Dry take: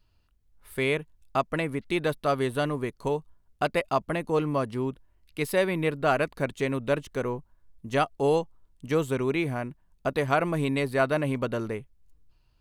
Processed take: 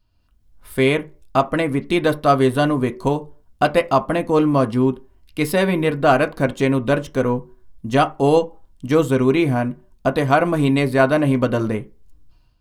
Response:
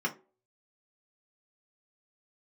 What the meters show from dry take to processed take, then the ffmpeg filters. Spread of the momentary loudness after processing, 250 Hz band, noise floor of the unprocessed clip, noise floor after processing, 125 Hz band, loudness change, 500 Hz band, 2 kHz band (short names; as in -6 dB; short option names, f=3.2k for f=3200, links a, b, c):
9 LU, +11.5 dB, -66 dBFS, -57 dBFS, +10.0 dB, +9.0 dB, +8.5 dB, +7.0 dB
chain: -filter_complex "[0:a]dynaudnorm=f=110:g=5:m=9.5dB,asplit=2[a][b];[1:a]atrim=start_sample=2205,afade=t=out:st=0.33:d=0.01,atrim=end_sample=14994[c];[b][c]afir=irnorm=-1:irlink=0,volume=-12.5dB[d];[a][d]amix=inputs=2:normalize=0"